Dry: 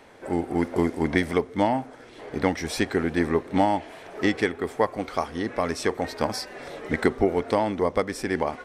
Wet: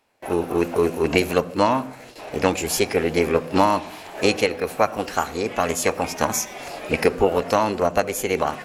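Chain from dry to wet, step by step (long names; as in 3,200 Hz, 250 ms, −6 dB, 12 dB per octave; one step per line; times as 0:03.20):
noise gate with hold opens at −37 dBFS
high-shelf EQ 4,800 Hz +9 dB
formants moved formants +4 semitones
on a send: convolution reverb RT60 0.45 s, pre-delay 67 ms, DRR 21 dB
on the sum: level +3.5 dB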